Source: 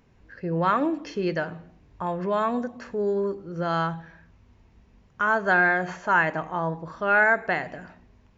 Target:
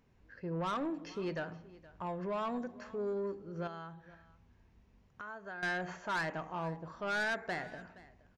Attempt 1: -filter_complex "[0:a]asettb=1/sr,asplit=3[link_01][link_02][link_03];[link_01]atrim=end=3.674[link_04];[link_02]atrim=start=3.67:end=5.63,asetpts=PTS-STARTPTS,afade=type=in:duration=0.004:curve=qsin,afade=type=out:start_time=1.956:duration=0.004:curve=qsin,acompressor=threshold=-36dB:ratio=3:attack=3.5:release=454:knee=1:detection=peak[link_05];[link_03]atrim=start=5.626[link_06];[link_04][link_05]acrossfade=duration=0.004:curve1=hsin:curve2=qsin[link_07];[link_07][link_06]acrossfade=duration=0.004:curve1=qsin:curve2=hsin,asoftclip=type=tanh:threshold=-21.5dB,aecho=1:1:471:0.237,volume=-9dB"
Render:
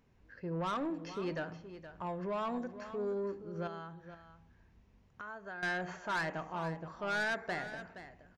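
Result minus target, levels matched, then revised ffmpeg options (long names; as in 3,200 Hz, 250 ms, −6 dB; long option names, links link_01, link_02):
echo-to-direct +7.5 dB
-filter_complex "[0:a]asettb=1/sr,asplit=3[link_01][link_02][link_03];[link_01]atrim=end=3.674[link_04];[link_02]atrim=start=3.67:end=5.63,asetpts=PTS-STARTPTS,afade=type=in:duration=0.004:curve=qsin,afade=type=out:start_time=1.956:duration=0.004:curve=qsin,acompressor=threshold=-36dB:ratio=3:attack=3.5:release=454:knee=1:detection=peak[link_05];[link_03]atrim=start=5.626[link_06];[link_04][link_05]acrossfade=duration=0.004:curve1=hsin:curve2=qsin[link_07];[link_07][link_06]acrossfade=duration=0.004:curve1=qsin:curve2=hsin,asoftclip=type=tanh:threshold=-21.5dB,aecho=1:1:471:0.1,volume=-9dB"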